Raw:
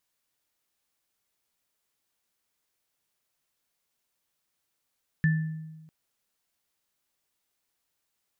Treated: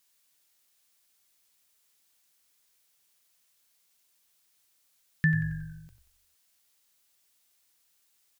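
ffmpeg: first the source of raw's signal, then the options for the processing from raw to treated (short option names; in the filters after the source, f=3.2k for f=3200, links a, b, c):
-f lavfi -i "aevalsrc='0.119*pow(10,-3*t/1.24)*sin(2*PI*158*t)+0.0501*pow(10,-3*t/0.56)*sin(2*PI*1760*t)':d=0.65:s=44100"
-filter_complex "[0:a]highshelf=f=2k:g=10.5,asplit=2[a][b];[b]asplit=5[c][d][e][f][g];[c]adelay=91,afreqshift=-47,volume=-11.5dB[h];[d]adelay=182,afreqshift=-94,volume=-17.9dB[i];[e]adelay=273,afreqshift=-141,volume=-24.3dB[j];[f]adelay=364,afreqshift=-188,volume=-30.6dB[k];[g]adelay=455,afreqshift=-235,volume=-37dB[l];[h][i][j][k][l]amix=inputs=5:normalize=0[m];[a][m]amix=inputs=2:normalize=0"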